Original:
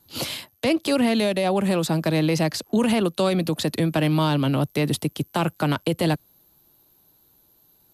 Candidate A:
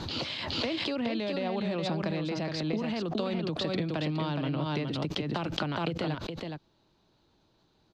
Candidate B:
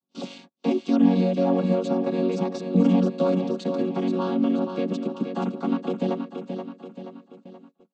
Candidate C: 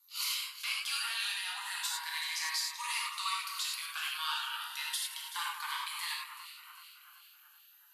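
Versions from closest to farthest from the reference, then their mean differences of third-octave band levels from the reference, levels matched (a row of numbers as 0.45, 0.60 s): A, B, C; 8.0, 11.0, 22.0 dB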